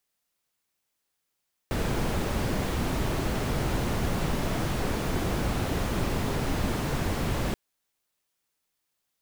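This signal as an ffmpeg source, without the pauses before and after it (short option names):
-f lavfi -i "anoisesrc=c=brown:a=0.209:d=5.83:r=44100:seed=1"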